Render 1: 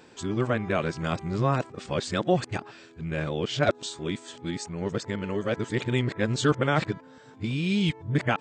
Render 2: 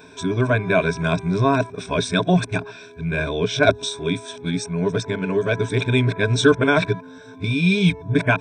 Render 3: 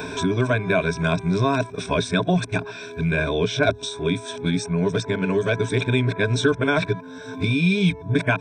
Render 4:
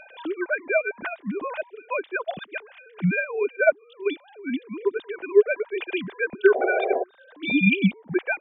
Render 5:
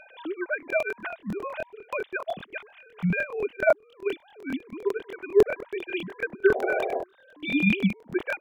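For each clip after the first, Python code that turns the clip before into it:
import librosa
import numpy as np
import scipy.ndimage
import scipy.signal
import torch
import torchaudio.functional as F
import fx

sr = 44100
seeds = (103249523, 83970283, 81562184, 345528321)

y1 = fx.ripple_eq(x, sr, per_octave=1.6, db=16)
y1 = y1 * 10.0 ** (4.5 / 20.0)
y2 = fx.band_squash(y1, sr, depth_pct=70)
y2 = y2 * 10.0 ** (-2.0 / 20.0)
y3 = fx.sine_speech(y2, sr)
y3 = fx.spec_paint(y3, sr, seeds[0], shape='noise', start_s=6.54, length_s=0.5, low_hz=360.0, high_hz=800.0, level_db=-20.0)
y3 = fx.upward_expand(y3, sr, threshold_db=-33.0, expansion=1.5)
y4 = fx.buffer_crackle(y3, sr, first_s=0.58, period_s=0.1, block=1024, kind='repeat')
y4 = y4 * 10.0 ** (-3.5 / 20.0)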